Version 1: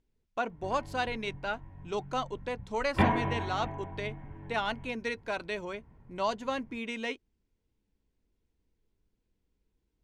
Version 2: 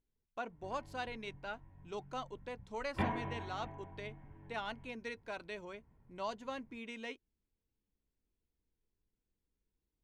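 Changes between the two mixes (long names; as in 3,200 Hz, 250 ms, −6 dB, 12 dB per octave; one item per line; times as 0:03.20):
speech −9.5 dB
background −10.0 dB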